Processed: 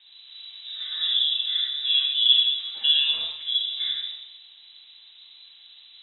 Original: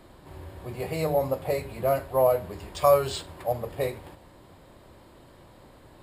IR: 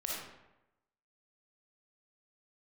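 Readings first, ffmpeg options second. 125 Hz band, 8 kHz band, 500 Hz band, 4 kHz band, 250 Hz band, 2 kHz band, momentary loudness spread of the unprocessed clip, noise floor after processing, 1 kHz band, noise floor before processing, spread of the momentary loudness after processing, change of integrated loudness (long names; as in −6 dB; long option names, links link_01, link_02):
below −35 dB, below −35 dB, below −35 dB, +25.0 dB, below −25 dB, +3.5 dB, 18 LU, −51 dBFS, below −25 dB, −53 dBFS, 19 LU, +5.5 dB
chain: -filter_complex "[0:a]highshelf=frequency=2300:gain=-11[link_01];[1:a]atrim=start_sample=2205[link_02];[link_01][link_02]afir=irnorm=-1:irlink=0,lowpass=frequency=3400:width_type=q:width=0.5098,lowpass=frequency=3400:width_type=q:width=0.6013,lowpass=frequency=3400:width_type=q:width=0.9,lowpass=frequency=3400:width_type=q:width=2.563,afreqshift=-4000"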